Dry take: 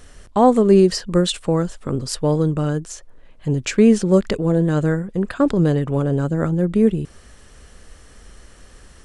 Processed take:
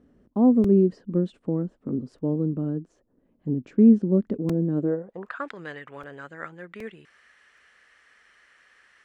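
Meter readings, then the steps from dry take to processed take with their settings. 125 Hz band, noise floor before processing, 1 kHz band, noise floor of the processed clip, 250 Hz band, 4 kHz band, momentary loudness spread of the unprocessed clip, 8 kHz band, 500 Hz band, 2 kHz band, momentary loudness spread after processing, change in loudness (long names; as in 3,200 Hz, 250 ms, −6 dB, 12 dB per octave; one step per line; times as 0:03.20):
−9.0 dB, −47 dBFS, −15.0 dB, −67 dBFS, −4.0 dB, below −20 dB, 12 LU, below −30 dB, −9.5 dB, −8.5 dB, 22 LU, −5.0 dB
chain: band-pass filter sweep 250 Hz → 1,900 Hz, 0:04.74–0:05.46
regular buffer underruns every 0.77 s, samples 128, repeat, from 0:00.64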